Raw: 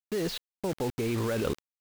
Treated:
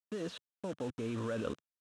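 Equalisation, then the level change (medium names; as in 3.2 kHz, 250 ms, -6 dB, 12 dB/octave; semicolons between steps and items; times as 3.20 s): cabinet simulation 120–9300 Hz, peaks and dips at 150 Hz -9 dB, 380 Hz -9 dB, 810 Hz -9 dB, 2.1 kHz -9 dB, 4.6 kHz -8 dB; treble shelf 4.4 kHz -10 dB; -3.5 dB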